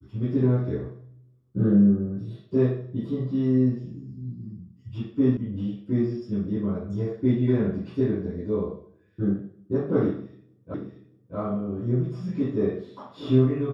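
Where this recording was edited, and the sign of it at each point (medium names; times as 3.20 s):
5.37 s: sound stops dead
10.74 s: repeat of the last 0.63 s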